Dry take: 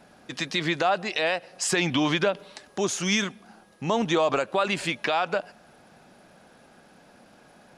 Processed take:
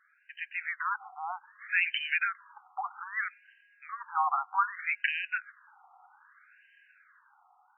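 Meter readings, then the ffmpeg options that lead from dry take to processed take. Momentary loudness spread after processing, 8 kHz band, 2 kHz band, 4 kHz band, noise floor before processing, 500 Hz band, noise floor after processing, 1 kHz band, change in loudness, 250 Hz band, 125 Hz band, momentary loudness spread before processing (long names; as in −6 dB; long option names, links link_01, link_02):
15 LU, below −40 dB, −1.5 dB, −12.0 dB, −55 dBFS, −32.0 dB, −66 dBFS, −3.5 dB, −6.0 dB, below −40 dB, below −40 dB, 10 LU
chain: -af "dynaudnorm=framelen=210:gausssize=9:maxgain=7.5dB,afftfilt=real='re*between(b*sr/1024,980*pow(2200/980,0.5+0.5*sin(2*PI*0.63*pts/sr))/1.41,980*pow(2200/980,0.5+0.5*sin(2*PI*0.63*pts/sr))*1.41)':imag='im*between(b*sr/1024,980*pow(2200/980,0.5+0.5*sin(2*PI*0.63*pts/sr))/1.41,980*pow(2200/980,0.5+0.5*sin(2*PI*0.63*pts/sr))*1.41)':win_size=1024:overlap=0.75,volume=-5.5dB"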